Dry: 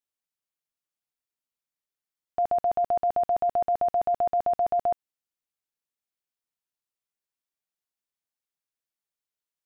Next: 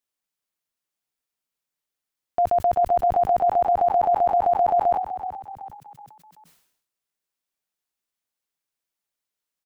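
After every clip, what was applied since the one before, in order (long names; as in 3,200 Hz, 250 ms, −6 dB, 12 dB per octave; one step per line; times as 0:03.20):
parametric band 91 Hz −5 dB 0.54 octaves
echo with shifted repeats 378 ms, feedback 44%, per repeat +40 Hz, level −11.5 dB
level that may fall only so fast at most 78 dB per second
level +4.5 dB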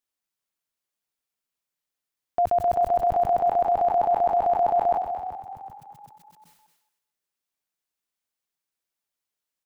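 feedback echo with a high-pass in the loop 224 ms, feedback 16%, high-pass 420 Hz, level −9 dB
level −1.5 dB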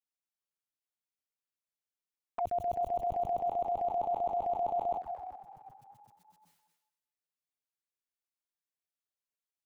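flanger swept by the level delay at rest 11.8 ms, full sweep at −19 dBFS
level −8.5 dB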